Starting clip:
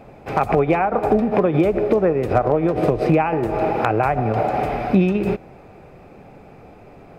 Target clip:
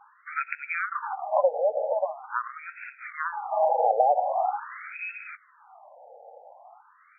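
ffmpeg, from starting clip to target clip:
-filter_complex "[0:a]asettb=1/sr,asplit=3[s0][s1][s2];[s0]atrim=end=4.344[s3];[s1]atrim=start=4.34:end=5,asetpts=PTS-STARTPTS,afade=t=in:d=0.004:c=qsin,afade=t=out:st=0.656:d=0.004:c=qsin,equalizer=f=1100:t=o:w=0.93:g=-4[s4];[s2]atrim=start=4.996[s5];[s3][s4]acrossfade=d=0.004:c1=hsin:c2=qsin[s6];[s6][s5]acrossfade=d=0.004:c1=qsin:c2=hsin,afftfilt=real='re*between(b*sr/1024,620*pow(1900/620,0.5+0.5*sin(2*PI*0.44*pts/sr))/1.41,620*pow(1900/620,0.5+0.5*sin(2*PI*0.44*pts/sr))*1.41)':imag='im*between(b*sr/1024,620*pow(1900/620,0.5+0.5*sin(2*PI*0.44*pts/sr))/1.41,620*pow(1900/620,0.5+0.5*sin(2*PI*0.44*pts/sr))*1.41)':win_size=1024:overlap=0.75"

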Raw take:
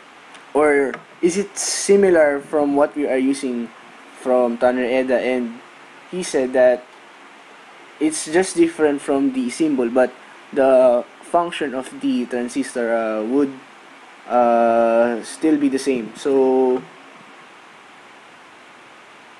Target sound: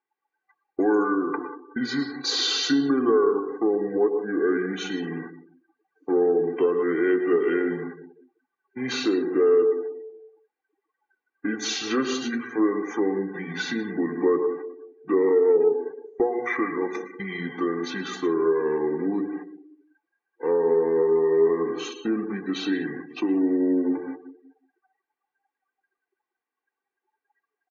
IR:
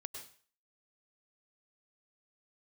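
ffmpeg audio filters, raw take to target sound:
-filter_complex "[0:a]acrossover=split=260 7000:gain=0.0708 1 0.112[s0][s1][s2];[s0][s1][s2]amix=inputs=3:normalize=0,bandreject=f=1800:w=11,agate=range=0.251:threshold=0.0178:ratio=16:detection=peak,asplit=2[s3][s4];[1:a]atrim=start_sample=2205,asetrate=61740,aresample=44100,highshelf=f=2200:g=5[s5];[s4][s5]afir=irnorm=-1:irlink=0,volume=2.11[s6];[s3][s6]amix=inputs=2:normalize=0,acompressor=threshold=0.126:ratio=2,equalizer=f=880:t=o:w=0.32:g=-12,aecho=1:1:1.8:0.67,asetrate=30870,aresample=44100,asplit=2[s7][s8];[s8]asoftclip=type=tanh:threshold=0.188,volume=0.335[s9];[s7][s9]amix=inputs=2:normalize=0,bandreject=f=60:t=h:w=6,bandreject=f=120:t=h:w=6,bandreject=f=180:t=h:w=6,bandreject=f=240:t=h:w=6,bandreject=f=300:t=h:w=6,asplit=2[s10][s11];[s11]adelay=186,lowpass=f=3400:p=1,volume=0.188,asplit=2[s12][s13];[s13]adelay=186,lowpass=f=3400:p=1,volume=0.42,asplit=2[s14][s15];[s15]adelay=186,lowpass=f=3400:p=1,volume=0.42,asplit=2[s16][s17];[s17]adelay=186,lowpass=f=3400:p=1,volume=0.42[s18];[s10][s12][s14][s16][s18]amix=inputs=5:normalize=0,afftdn=nr=35:nf=-31,volume=0.398"

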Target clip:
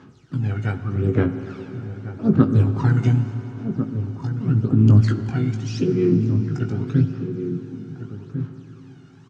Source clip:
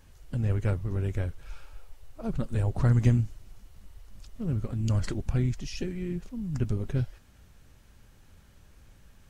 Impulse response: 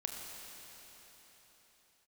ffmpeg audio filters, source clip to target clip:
-filter_complex "[0:a]aphaser=in_gain=1:out_gain=1:delay=1.4:decay=0.73:speed=0.83:type=sinusoidal,highpass=f=120:w=0.5412,highpass=f=120:w=1.3066,equalizer=f=130:t=q:w=4:g=5,equalizer=f=270:t=q:w=4:g=9,equalizer=f=390:t=q:w=4:g=6,equalizer=f=560:t=q:w=4:g=-9,equalizer=f=1300:t=q:w=4:g=8,equalizer=f=1900:t=q:w=4:g=-4,lowpass=f=6400:w=0.5412,lowpass=f=6400:w=1.3066,asplit=2[s0][s1];[s1]asetrate=55563,aresample=44100,atempo=0.793701,volume=0.224[s2];[s0][s2]amix=inputs=2:normalize=0,asplit=2[s3][s4];[s4]adelay=19,volume=0.447[s5];[s3][s5]amix=inputs=2:normalize=0,asplit=2[s6][s7];[s7]adelay=1399,volume=0.355,highshelf=f=4000:g=-31.5[s8];[s6][s8]amix=inputs=2:normalize=0,asplit=2[s9][s10];[1:a]atrim=start_sample=2205,highshelf=f=4300:g=-10[s11];[s10][s11]afir=irnorm=-1:irlink=0,volume=0.841[s12];[s9][s12]amix=inputs=2:normalize=0,volume=0.75"

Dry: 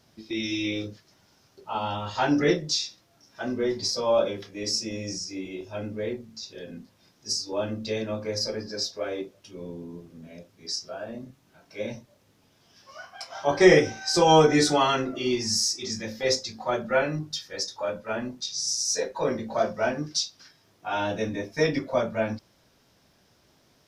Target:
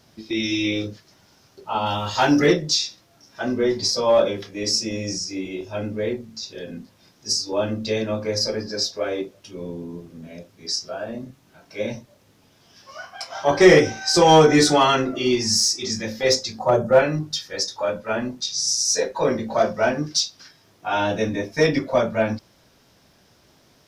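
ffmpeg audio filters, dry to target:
-filter_complex "[0:a]asettb=1/sr,asplit=3[s0][s1][s2];[s0]atrim=end=16.594[s3];[s1]atrim=start=16.59:end=16.99,asetpts=PTS-STARTPTS,afade=t=in:d=0.004:c=qsin,afade=t=out:st=0.396:d=0.004:c=qsin,equalizer=f=125:t=o:w=1:g=10,equalizer=f=250:t=o:w=1:g=-3,equalizer=f=500:t=o:w=1:g=6,equalizer=f=1000:t=o:w=1:g=3,equalizer=f=2000:t=o:w=1:g=-10,equalizer=f=4000:t=o:w=1:g=-10,equalizer=f=8000:t=o:w=1:g=5[s4];[s2]atrim=start=16.986[s5];[s3][s4]acrossfade=d=0.004:c1=hsin:c2=qsin[s6];[s6][s5]acrossfade=d=0.004:c1=qsin:c2=hsin,asplit=2[s7][s8];[s8]asoftclip=type=hard:threshold=0.141,volume=0.631[s9];[s7][s9]amix=inputs=2:normalize=0,asettb=1/sr,asplit=3[s10][s11][s12];[s10]atrim=end=1.864[s13];[s11]atrim=start=1.86:end=2.46,asetpts=PTS-STARTPTS,afade=t=in:d=0.004:c=qsin,afade=t=out:st=0.596:d=0.004:c=qsin,highshelf=f=4800:g=10[s14];[s12]atrim=start=2.456[s15];[s13][s14]acrossfade=d=0.004:c1=hsin:c2=qsin[s16];[s16][s15]acrossfade=d=0.004:c1=qsin:c2=hsin,volume=1.19"

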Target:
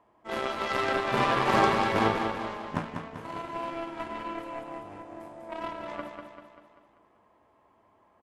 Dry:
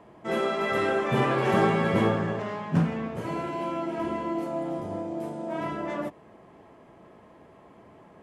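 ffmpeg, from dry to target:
-af "equalizer=f=160:t=o:w=0.67:g=-10,equalizer=f=400:t=o:w=0.67:g=-3,equalizer=f=1000:t=o:w=0.67:g=6,aeval=exprs='0.299*(cos(1*acos(clip(val(0)/0.299,-1,1)))-cos(1*PI/2))+0.0335*(cos(7*acos(clip(val(0)/0.299,-1,1)))-cos(7*PI/2))':c=same,aecho=1:1:195|390|585|780|975|1170:0.501|0.261|0.136|0.0705|0.0366|0.0191"

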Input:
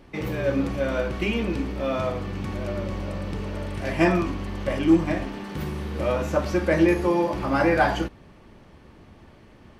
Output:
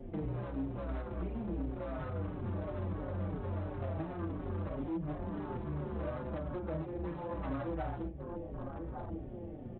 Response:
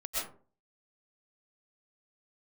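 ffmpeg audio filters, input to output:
-filter_complex "[0:a]highshelf=f=2600:g=-6.5,asplit=2[s0][s1];[s1]adelay=33,volume=0.473[s2];[s0][s2]amix=inputs=2:normalize=0,acompressor=threshold=0.0224:ratio=3,asplit=2[s3][s4];[s4]adelay=1149,lowpass=f=1200:p=1,volume=0.178,asplit=2[s5][s6];[s6]adelay=1149,lowpass=f=1200:p=1,volume=0.49,asplit=2[s7][s8];[s8]adelay=1149,lowpass=f=1200:p=1,volume=0.49,asplit=2[s9][s10];[s10]adelay=1149,lowpass=f=1200:p=1,volume=0.49,asplit=2[s11][s12];[s12]adelay=1149,lowpass=f=1200:p=1,volume=0.49[s13];[s3][s5][s7][s9][s11][s13]amix=inputs=6:normalize=0,acrossover=split=180|1600[s14][s15][s16];[s14]acompressor=threshold=0.01:ratio=4[s17];[s15]acompressor=threshold=0.00794:ratio=4[s18];[s16]acompressor=threshold=0.00158:ratio=4[s19];[s17][s18][s19]amix=inputs=3:normalize=0,afwtdn=0.00501,aresample=8000,asoftclip=type=hard:threshold=0.0119,aresample=44100,asplit=2[s20][s21];[s21]adelay=5.1,afreqshift=-2.9[s22];[s20][s22]amix=inputs=2:normalize=1,volume=2.24"

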